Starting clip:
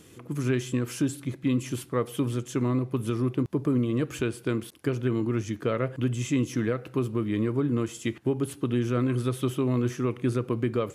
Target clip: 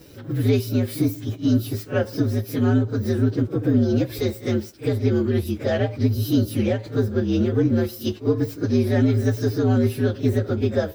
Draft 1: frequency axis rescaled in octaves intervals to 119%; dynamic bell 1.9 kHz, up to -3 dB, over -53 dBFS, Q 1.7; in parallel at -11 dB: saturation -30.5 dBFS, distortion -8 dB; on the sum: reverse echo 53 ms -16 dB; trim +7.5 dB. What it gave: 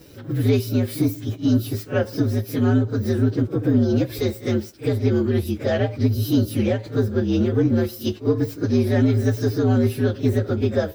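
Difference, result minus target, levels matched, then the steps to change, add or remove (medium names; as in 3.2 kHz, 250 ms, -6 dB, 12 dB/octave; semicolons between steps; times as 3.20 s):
saturation: distortion -5 dB
change: saturation -42.5 dBFS, distortion -3 dB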